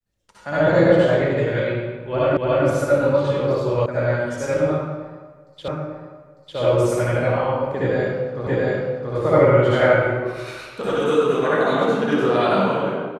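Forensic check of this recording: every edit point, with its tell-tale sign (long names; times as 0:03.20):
0:02.37: the same again, the last 0.29 s
0:03.86: cut off before it has died away
0:05.68: the same again, the last 0.9 s
0:08.47: the same again, the last 0.68 s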